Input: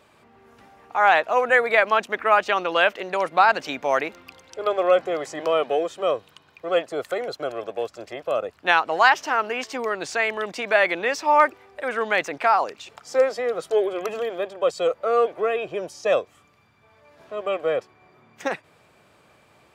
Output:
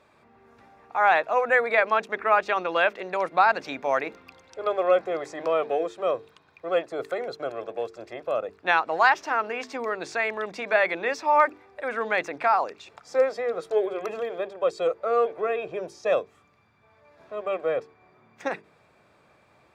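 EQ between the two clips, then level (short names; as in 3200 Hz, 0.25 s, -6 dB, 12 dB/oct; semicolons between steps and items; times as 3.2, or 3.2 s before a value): high shelf 6400 Hz -11 dB; notches 50/100/150/200/250/300/350/400/450 Hz; notch 3000 Hz, Q 8.5; -2.5 dB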